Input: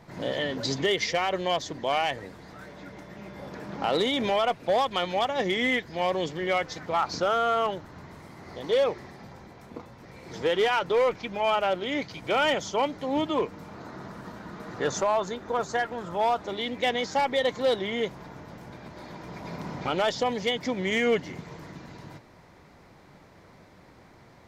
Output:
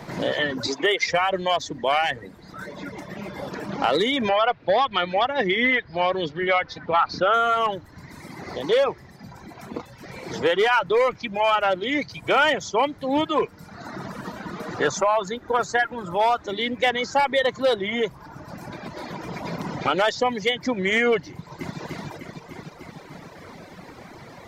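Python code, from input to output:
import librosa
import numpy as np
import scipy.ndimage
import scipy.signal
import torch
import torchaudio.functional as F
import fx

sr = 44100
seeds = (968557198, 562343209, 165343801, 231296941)

y = fx.highpass(x, sr, hz=290.0, slope=12, at=(0.67, 1.07))
y = fx.lowpass(y, sr, hz=4600.0, slope=24, at=(4.29, 7.34))
y = fx.echo_throw(y, sr, start_s=21.3, length_s=0.49, ms=300, feedback_pct=65, wet_db=-0.5)
y = fx.dereverb_blind(y, sr, rt60_s=1.4)
y = fx.dynamic_eq(y, sr, hz=1500.0, q=1.1, threshold_db=-39.0, ratio=4.0, max_db=5)
y = fx.band_squash(y, sr, depth_pct=40)
y = y * 10.0 ** (4.0 / 20.0)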